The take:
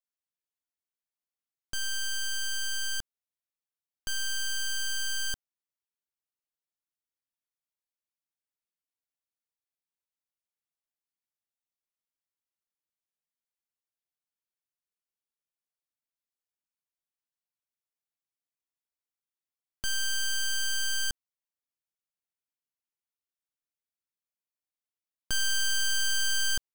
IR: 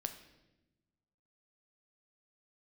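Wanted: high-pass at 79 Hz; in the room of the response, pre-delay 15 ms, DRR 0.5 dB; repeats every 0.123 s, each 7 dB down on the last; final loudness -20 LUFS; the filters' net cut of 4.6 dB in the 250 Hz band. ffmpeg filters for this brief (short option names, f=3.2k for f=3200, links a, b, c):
-filter_complex "[0:a]highpass=79,equalizer=f=250:t=o:g=-6,aecho=1:1:123|246|369|492|615:0.447|0.201|0.0905|0.0407|0.0183,asplit=2[a][b];[1:a]atrim=start_sample=2205,adelay=15[c];[b][c]afir=irnorm=-1:irlink=0,volume=0.5dB[d];[a][d]amix=inputs=2:normalize=0,volume=7.5dB"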